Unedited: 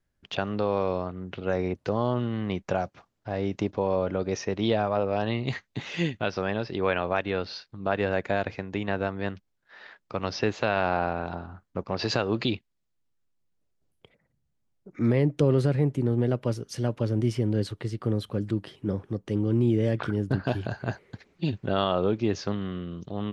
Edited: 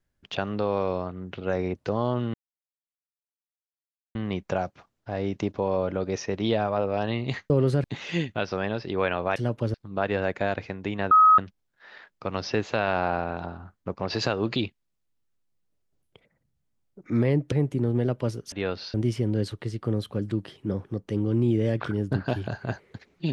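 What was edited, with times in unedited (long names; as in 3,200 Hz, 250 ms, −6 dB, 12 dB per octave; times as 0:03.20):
0:02.34: splice in silence 1.81 s
0:07.21–0:07.63: swap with 0:16.75–0:17.13
0:09.00–0:09.27: beep over 1,270 Hz −12 dBFS
0:15.41–0:15.75: move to 0:05.69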